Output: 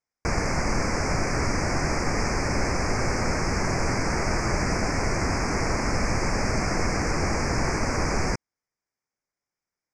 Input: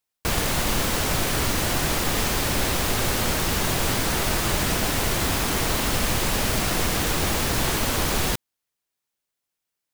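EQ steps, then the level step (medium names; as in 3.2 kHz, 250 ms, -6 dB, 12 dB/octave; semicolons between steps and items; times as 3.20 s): elliptic band-stop 2.3–5 kHz, stop band 80 dB; low-pass 6.3 kHz 24 dB/octave; 0.0 dB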